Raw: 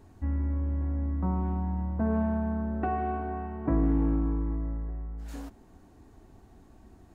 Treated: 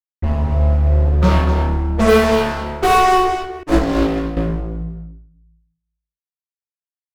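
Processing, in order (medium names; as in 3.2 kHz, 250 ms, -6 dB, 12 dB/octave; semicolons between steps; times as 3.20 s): expander on every frequency bin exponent 3; small resonant body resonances 450/1200 Hz, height 16 dB, ringing for 40 ms; fuzz box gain 39 dB, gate -45 dBFS; multi-tap echo 62/247 ms -7/-8.5 dB; simulated room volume 98 m³, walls mixed, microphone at 0.92 m; 3.63–4.37 s: upward expansion 2.5:1, over -24 dBFS; trim -1 dB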